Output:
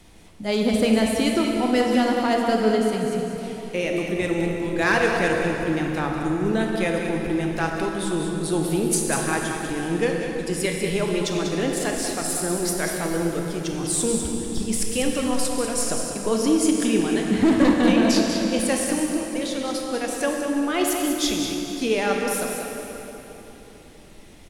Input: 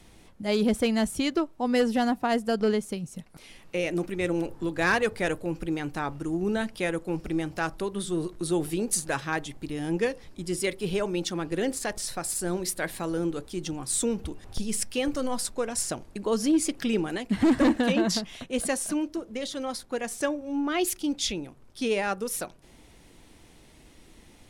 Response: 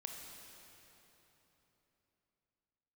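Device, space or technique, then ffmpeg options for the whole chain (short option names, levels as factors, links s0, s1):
cave: -filter_complex "[0:a]aecho=1:1:194:0.398[s0];[1:a]atrim=start_sample=2205[s1];[s0][s1]afir=irnorm=-1:irlink=0,volume=2.37"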